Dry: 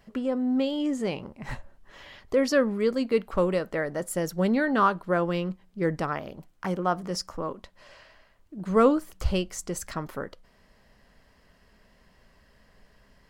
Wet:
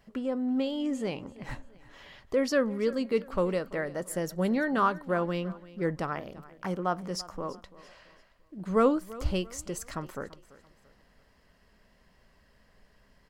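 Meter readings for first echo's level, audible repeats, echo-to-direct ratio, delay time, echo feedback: -19.0 dB, 2, -18.5 dB, 0.338 s, 37%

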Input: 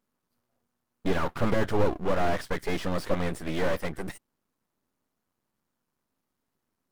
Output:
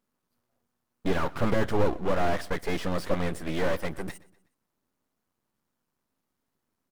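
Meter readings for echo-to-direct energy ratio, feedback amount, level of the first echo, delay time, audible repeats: -21.0 dB, 46%, -22.0 dB, 0.123 s, 2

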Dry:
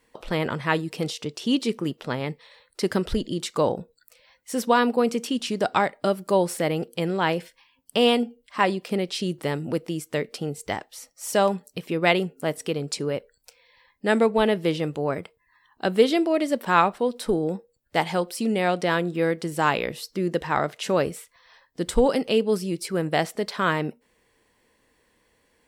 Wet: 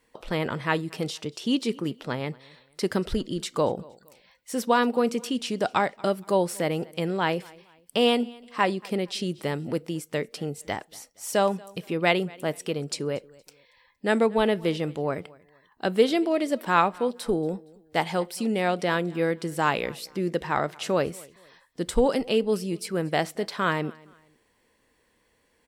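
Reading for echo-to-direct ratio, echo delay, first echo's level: -23.5 dB, 0.233 s, -24.0 dB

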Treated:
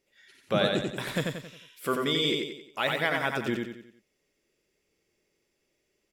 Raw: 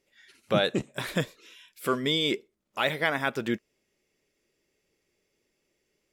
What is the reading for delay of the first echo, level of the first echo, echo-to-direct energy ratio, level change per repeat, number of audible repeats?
90 ms, -3.5 dB, -2.5 dB, -7.5 dB, 5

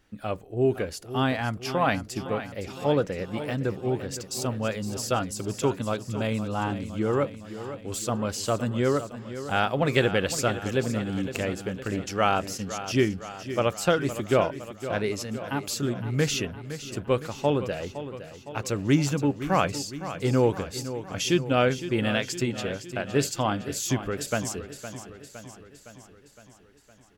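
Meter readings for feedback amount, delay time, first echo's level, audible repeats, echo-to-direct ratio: 59%, 0.512 s, -12.0 dB, 6, -10.0 dB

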